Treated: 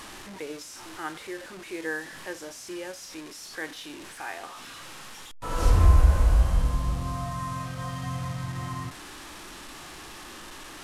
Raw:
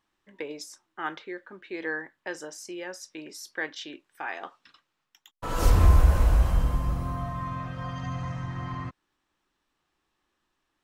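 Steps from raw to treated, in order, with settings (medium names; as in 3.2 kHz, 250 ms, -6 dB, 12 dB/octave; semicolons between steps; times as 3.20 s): one-bit delta coder 64 kbps, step -35.5 dBFS; harmonic-percussive split percussive -6 dB; trim +1 dB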